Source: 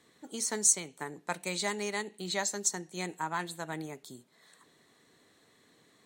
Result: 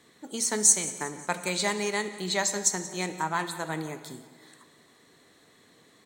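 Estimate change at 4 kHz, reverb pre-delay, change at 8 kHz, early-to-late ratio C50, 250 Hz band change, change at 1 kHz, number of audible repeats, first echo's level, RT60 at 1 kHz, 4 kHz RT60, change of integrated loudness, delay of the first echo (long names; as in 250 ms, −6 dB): +5.5 dB, 18 ms, +5.5 dB, 10.5 dB, +5.5 dB, +5.5 dB, 3, −18.0 dB, 1.6 s, 1.4 s, +5.5 dB, 180 ms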